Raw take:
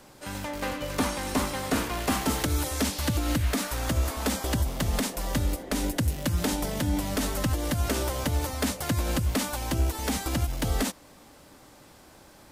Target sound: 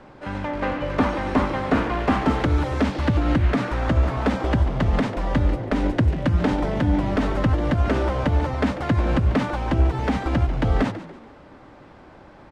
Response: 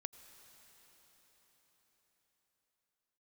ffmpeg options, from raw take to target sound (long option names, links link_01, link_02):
-filter_complex "[0:a]lowpass=2000,asplit=2[link_01][link_02];[link_02]asplit=3[link_03][link_04][link_05];[link_03]adelay=143,afreqshift=61,volume=-14dB[link_06];[link_04]adelay=286,afreqshift=122,volume=-22.9dB[link_07];[link_05]adelay=429,afreqshift=183,volume=-31.7dB[link_08];[link_06][link_07][link_08]amix=inputs=3:normalize=0[link_09];[link_01][link_09]amix=inputs=2:normalize=0,volume=7dB"